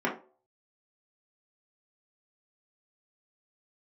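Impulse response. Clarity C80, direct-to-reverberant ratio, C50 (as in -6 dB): 15.5 dB, -4.5 dB, 9.0 dB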